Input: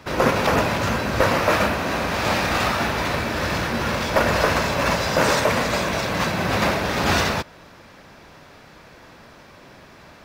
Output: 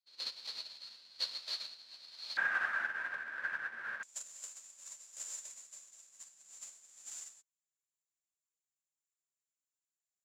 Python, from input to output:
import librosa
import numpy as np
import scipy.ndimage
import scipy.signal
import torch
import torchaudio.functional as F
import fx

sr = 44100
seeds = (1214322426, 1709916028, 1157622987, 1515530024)

y = fx.halfwave_hold(x, sr)
y = fx.bandpass_q(y, sr, hz=fx.steps((0.0, 4300.0), (2.37, 1600.0), (4.03, 7200.0)), q=16.0)
y = fx.upward_expand(y, sr, threshold_db=-53.0, expansion=2.5)
y = F.gain(torch.from_numpy(y), 2.0).numpy()